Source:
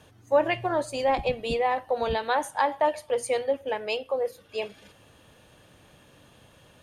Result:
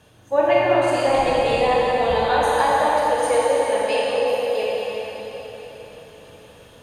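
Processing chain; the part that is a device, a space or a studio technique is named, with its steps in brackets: cathedral (reverberation RT60 4.4 s, pre-delay 19 ms, DRR -7 dB)

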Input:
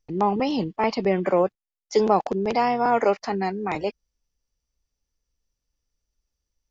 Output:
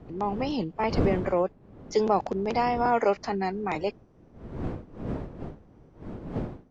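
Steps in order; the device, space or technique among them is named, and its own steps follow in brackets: smartphone video outdoors (wind noise 310 Hz -32 dBFS; level rider gain up to 6 dB; trim -8 dB; AAC 96 kbps 22.05 kHz)

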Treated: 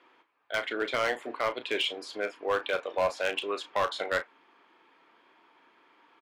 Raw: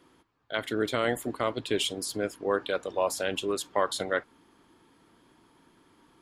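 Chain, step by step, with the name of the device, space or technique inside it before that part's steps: megaphone (band-pass 560–2900 Hz; peaking EQ 2.4 kHz +6 dB 0.45 oct; hard clipper -24 dBFS, distortion -12 dB; doubling 34 ms -11 dB); trim +3 dB

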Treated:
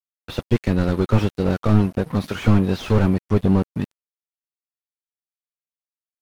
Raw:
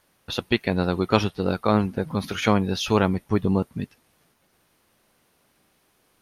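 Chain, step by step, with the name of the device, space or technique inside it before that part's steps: early transistor amplifier (crossover distortion -40.5 dBFS; slew-rate limiter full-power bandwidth 34 Hz); trim +6.5 dB

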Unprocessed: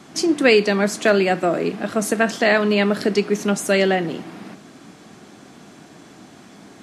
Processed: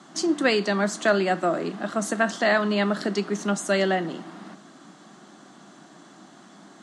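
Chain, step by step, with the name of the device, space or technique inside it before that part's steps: television speaker (cabinet simulation 170–8800 Hz, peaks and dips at 250 Hz -4 dB, 450 Hz -9 dB, 1.2 kHz +3 dB, 2.4 kHz -10 dB, 5.2 kHz -4 dB); trim -2.5 dB

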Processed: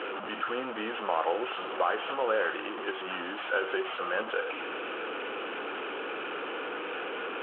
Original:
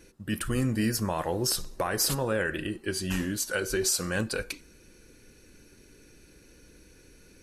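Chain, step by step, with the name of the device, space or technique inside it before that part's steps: digital answering machine (band-pass 330–3100 Hz; one-bit delta coder 16 kbps, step -30.5 dBFS; cabinet simulation 360–3200 Hz, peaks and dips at 470 Hz +4 dB, 780 Hz +5 dB, 1.3 kHz +8 dB, 2 kHz -7 dB, 3 kHz +7 dB)

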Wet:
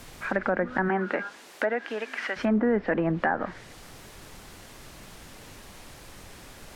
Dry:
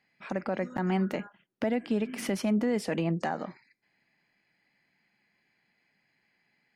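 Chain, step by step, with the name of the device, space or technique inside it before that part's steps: horn gramophone (band-pass 200–3100 Hz; peaking EQ 1.6 kHz +11.5 dB 0.58 oct; wow and flutter; pink noise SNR 17 dB); 0.88–2.36 s: high-pass 230 Hz -> 760 Hz 12 dB/octave; low-pass that closes with the level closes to 1.4 kHz, closed at -25.5 dBFS; trim +5 dB

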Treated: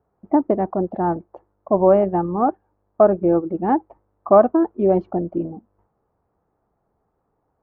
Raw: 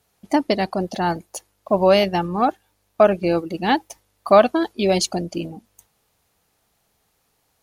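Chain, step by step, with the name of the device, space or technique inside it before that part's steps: under water (low-pass 1.2 kHz 24 dB/octave; peaking EQ 350 Hz +4.5 dB 0.54 oct)

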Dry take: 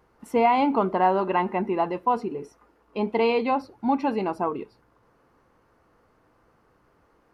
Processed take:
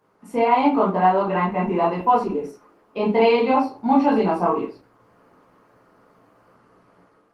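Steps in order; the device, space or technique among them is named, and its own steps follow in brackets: far-field microphone of a smart speaker (reverberation RT60 0.35 s, pre-delay 14 ms, DRR -5 dB; high-pass 130 Hz 24 dB/octave; level rider gain up to 6 dB; trim -3.5 dB; Opus 20 kbps 48 kHz)

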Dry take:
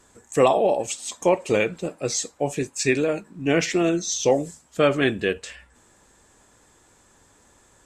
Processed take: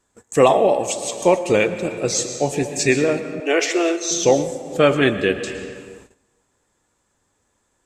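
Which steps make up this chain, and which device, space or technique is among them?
compressed reverb return (on a send at -5.5 dB: reverberation RT60 1.6 s, pre-delay 107 ms + compression, threshold -23 dBFS, peak gain reduction 10 dB); 3.40–4.11 s: on the sum: steep high-pass 340 Hz 36 dB/octave; gate -48 dBFS, range -16 dB; trim +4 dB

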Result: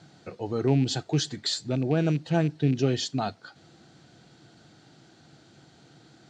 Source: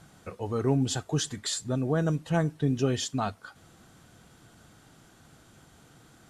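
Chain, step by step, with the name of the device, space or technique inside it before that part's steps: car door speaker with a rattle (rattle on loud lows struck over -28 dBFS, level -33 dBFS; cabinet simulation 110–6700 Hz, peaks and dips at 140 Hz +5 dB, 330 Hz +6 dB, 730 Hz +3 dB, 1.1 kHz -7 dB, 4.3 kHz +8 dB)

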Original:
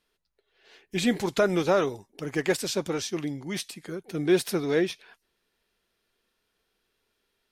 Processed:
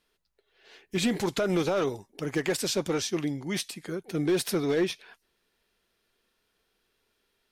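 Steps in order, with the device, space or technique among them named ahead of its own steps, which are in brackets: limiter into clipper (peak limiter -17.5 dBFS, peak gain reduction 7.5 dB; hard clipper -21 dBFS, distortion -20 dB); trim +1.5 dB

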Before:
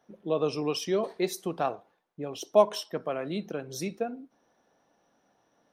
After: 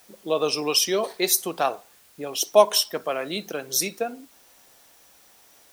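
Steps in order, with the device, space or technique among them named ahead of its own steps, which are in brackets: turntable without a phono preamp (RIAA curve recording; white noise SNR 30 dB); trim +6.5 dB

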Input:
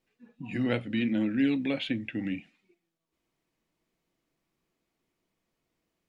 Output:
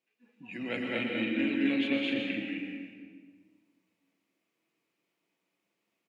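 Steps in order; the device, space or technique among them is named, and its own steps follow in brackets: stadium PA (high-pass 240 Hz 12 dB/octave; peaking EQ 2.5 kHz +7 dB 0.56 oct; loudspeakers at several distances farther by 74 m 0 dB, 89 m -3 dB; reverberation RT60 1.6 s, pre-delay 106 ms, DRR 2 dB); trim -7 dB

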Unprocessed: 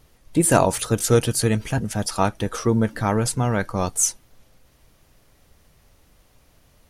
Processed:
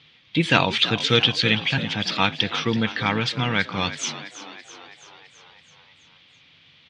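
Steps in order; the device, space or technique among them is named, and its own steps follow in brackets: frequency weighting D; frequency-shifting delay pedal into a guitar cabinet (frequency-shifting echo 330 ms, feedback 63%, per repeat +53 Hz, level -13.5 dB; cabinet simulation 89–4100 Hz, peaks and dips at 91 Hz +6 dB, 150 Hz +8 dB, 390 Hz -6 dB, 620 Hz -8 dB, 2.3 kHz +5 dB, 3.4 kHz +8 dB); trim -1 dB

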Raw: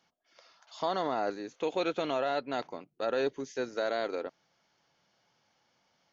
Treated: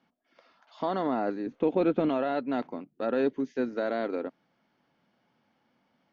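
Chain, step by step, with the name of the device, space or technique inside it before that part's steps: 1.46–2.09 s: tilt EQ -2.5 dB/octave; inside a cardboard box (low-pass 2.8 kHz 12 dB/octave; small resonant body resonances 240 Hz, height 12 dB, ringing for 30 ms)

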